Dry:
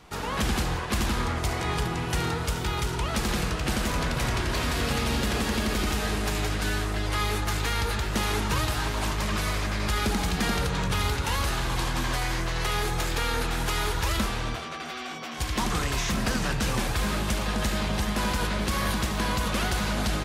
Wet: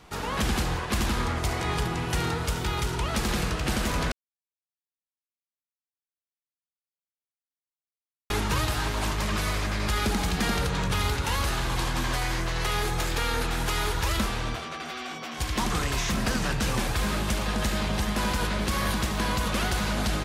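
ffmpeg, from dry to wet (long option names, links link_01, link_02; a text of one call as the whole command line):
ffmpeg -i in.wav -filter_complex "[0:a]asplit=3[link_01][link_02][link_03];[link_01]atrim=end=4.12,asetpts=PTS-STARTPTS,afade=type=out:start_time=4.116:duration=0.004:curve=hsin[link_04];[link_02]atrim=start=4.12:end=8.3,asetpts=PTS-STARTPTS,volume=0[link_05];[link_03]atrim=start=8.3,asetpts=PTS-STARTPTS,afade=type=in:duration=0.004:curve=hsin[link_06];[link_04][link_05][link_06]concat=n=3:v=0:a=1" out.wav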